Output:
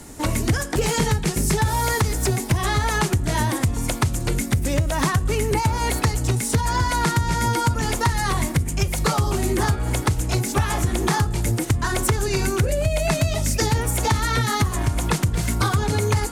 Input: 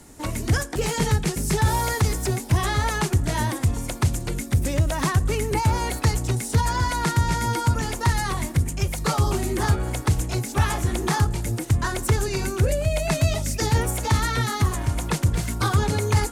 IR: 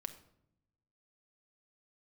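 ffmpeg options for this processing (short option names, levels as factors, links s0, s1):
-af "bandreject=f=184.9:t=h:w=4,bandreject=f=369.8:t=h:w=4,bandreject=f=554.7:t=h:w=4,bandreject=f=739.6:t=h:w=4,bandreject=f=924.5:t=h:w=4,bandreject=f=1109.4:t=h:w=4,bandreject=f=1294.3:t=h:w=4,bandreject=f=1479.2:t=h:w=4,bandreject=f=1664.1:t=h:w=4,bandreject=f=1849:t=h:w=4,bandreject=f=2033.9:t=h:w=4,bandreject=f=2218.8:t=h:w=4,bandreject=f=2403.7:t=h:w=4,bandreject=f=2588.6:t=h:w=4,bandreject=f=2773.5:t=h:w=4,bandreject=f=2958.4:t=h:w=4,bandreject=f=3143.3:t=h:w=4,bandreject=f=3328.2:t=h:w=4,bandreject=f=3513.1:t=h:w=4,bandreject=f=3698:t=h:w=4,bandreject=f=3882.9:t=h:w=4,bandreject=f=4067.8:t=h:w=4,bandreject=f=4252.7:t=h:w=4,bandreject=f=4437.6:t=h:w=4,bandreject=f=4622.5:t=h:w=4,bandreject=f=4807.4:t=h:w=4,bandreject=f=4992.3:t=h:w=4,bandreject=f=5177.2:t=h:w=4,acompressor=threshold=0.0631:ratio=6,volume=2.24"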